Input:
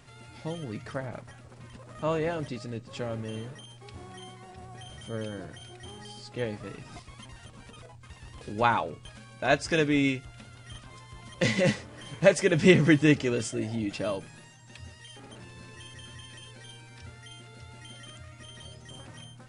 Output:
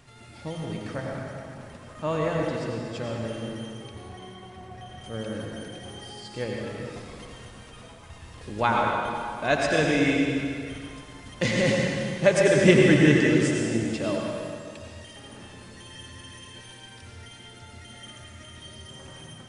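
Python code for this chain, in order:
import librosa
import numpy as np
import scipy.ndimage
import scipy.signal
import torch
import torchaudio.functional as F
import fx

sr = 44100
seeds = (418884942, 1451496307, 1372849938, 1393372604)

y = fx.lowpass(x, sr, hz=3000.0, slope=6, at=(3.86, 5.04))
y = fx.rev_plate(y, sr, seeds[0], rt60_s=2.3, hf_ratio=0.85, predelay_ms=75, drr_db=-1.0)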